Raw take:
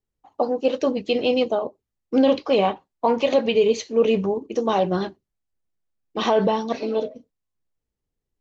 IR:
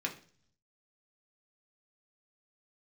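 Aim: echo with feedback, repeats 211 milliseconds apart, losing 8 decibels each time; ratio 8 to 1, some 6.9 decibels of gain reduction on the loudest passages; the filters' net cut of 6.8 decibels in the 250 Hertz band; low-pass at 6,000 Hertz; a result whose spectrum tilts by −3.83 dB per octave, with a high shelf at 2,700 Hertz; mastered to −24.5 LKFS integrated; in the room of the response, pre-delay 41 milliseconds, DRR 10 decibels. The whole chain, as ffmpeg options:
-filter_complex "[0:a]lowpass=6000,equalizer=frequency=250:width_type=o:gain=-8,highshelf=frequency=2700:gain=7,acompressor=threshold=-22dB:ratio=8,aecho=1:1:211|422|633|844|1055:0.398|0.159|0.0637|0.0255|0.0102,asplit=2[link_01][link_02];[1:a]atrim=start_sample=2205,adelay=41[link_03];[link_02][link_03]afir=irnorm=-1:irlink=0,volume=-13.5dB[link_04];[link_01][link_04]amix=inputs=2:normalize=0,volume=3dB"

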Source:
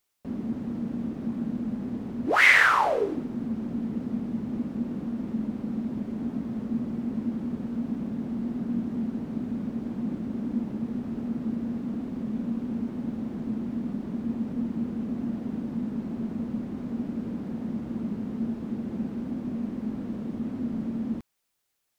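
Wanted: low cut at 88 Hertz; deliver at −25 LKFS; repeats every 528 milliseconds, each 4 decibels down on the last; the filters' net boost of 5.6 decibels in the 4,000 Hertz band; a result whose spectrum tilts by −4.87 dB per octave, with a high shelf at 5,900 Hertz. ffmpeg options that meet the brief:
ffmpeg -i in.wav -af "highpass=88,equalizer=frequency=4000:width_type=o:gain=6,highshelf=frequency=5900:gain=5,aecho=1:1:528|1056|1584|2112|2640|3168|3696|4224|4752:0.631|0.398|0.25|0.158|0.0994|0.0626|0.0394|0.0249|0.0157,volume=1.5dB" out.wav

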